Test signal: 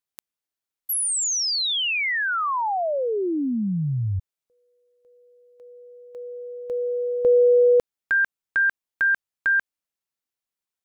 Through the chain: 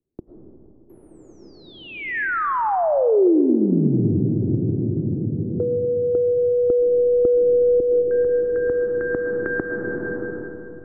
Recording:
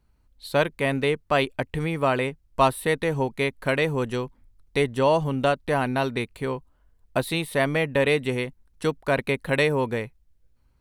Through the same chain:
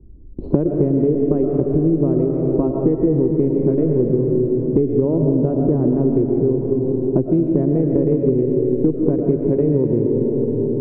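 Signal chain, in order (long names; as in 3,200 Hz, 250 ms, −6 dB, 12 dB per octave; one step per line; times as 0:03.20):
adaptive Wiener filter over 25 samples
noise gate with hold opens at −50 dBFS, range −22 dB
low-shelf EQ 180 Hz +9 dB
downward compressor 2 to 1, threshold −29 dBFS
floating-point word with a short mantissa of 6 bits
low-pass with resonance 350 Hz, resonance Q 4.2
tuned comb filter 79 Hz, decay 1.4 s, harmonics all, mix 30%
comb and all-pass reverb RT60 2.9 s, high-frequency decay 0.4×, pre-delay 70 ms, DRR 2.5 dB
multiband upward and downward compressor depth 100%
level +8.5 dB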